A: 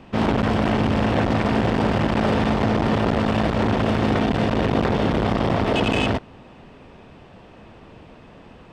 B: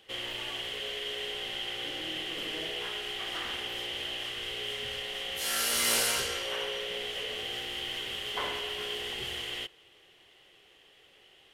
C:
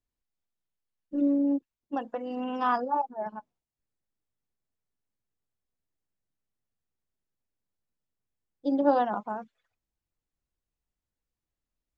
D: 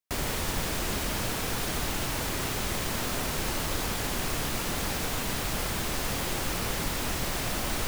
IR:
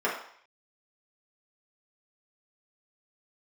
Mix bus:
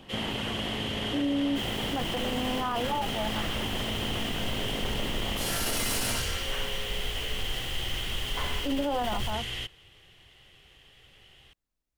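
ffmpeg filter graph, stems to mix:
-filter_complex "[0:a]acompressor=threshold=-25dB:ratio=6,volume=-6.5dB[link_01];[1:a]asubboost=boost=7:cutoff=140,asoftclip=type=tanh:threshold=-28.5dB,volume=2.5dB[link_02];[2:a]volume=1.5dB[link_03];[3:a]asubboost=boost=6.5:cutoff=55,adelay=1450,volume=-11.5dB[link_04];[link_01][link_02][link_03][link_04]amix=inputs=4:normalize=0,alimiter=limit=-21dB:level=0:latency=1:release=10"

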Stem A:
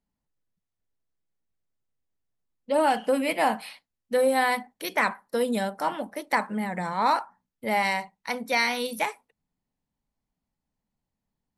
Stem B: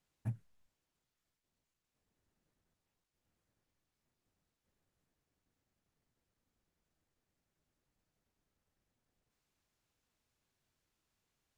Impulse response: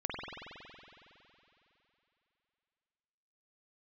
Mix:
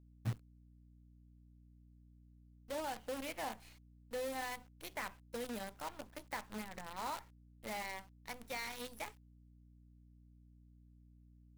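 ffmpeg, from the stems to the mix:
-filter_complex "[0:a]acompressor=threshold=-32dB:ratio=1.5,volume=-14.5dB[link_01];[1:a]volume=1dB[link_02];[link_01][link_02]amix=inputs=2:normalize=0,acrusher=bits=8:dc=4:mix=0:aa=0.000001,aeval=exprs='val(0)+0.000891*(sin(2*PI*60*n/s)+sin(2*PI*2*60*n/s)/2+sin(2*PI*3*60*n/s)/3+sin(2*PI*4*60*n/s)/4+sin(2*PI*5*60*n/s)/5)':channel_layout=same"

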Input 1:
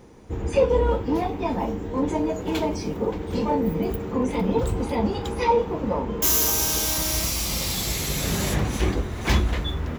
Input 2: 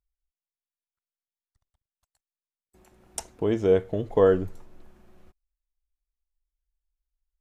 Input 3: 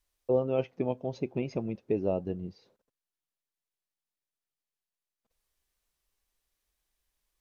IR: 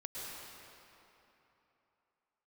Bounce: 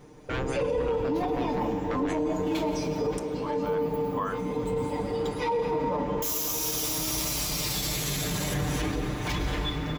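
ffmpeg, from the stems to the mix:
-filter_complex "[0:a]aecho=1:1:6.7:0.82,volume=-6.5dB,asplit=2[link_01][link_02];[link_02]volume=-3dB[link_03];[1:a]highpass=frequency=1100:width_type=q:width=4.9,volume=-7dB,asplit=2[link_04][link_05];[2:a]aeval=exprs='0.0335*(abs(mod(val(0)/0.0335+3,4)-2)-1)':channel_layout=same,lowpass=4900,volume=1.5dB[link_06];[link_05]apad=whole_len=440750[link_07];[link_01][link_07]sidechaincompress=threshold=-51dB:ratio=8:attack=16:release=753[link_08];[3:a]atrim=start_sample=2205[link_09];[link_03][link_09]afir=irnorm=-1:irlink=0[link_10];[link_08][link_04][link_06][link_10]amix=inputs=4:normalize=0,alimiter=limit=-20dB:level=0:latency=1:release=32"

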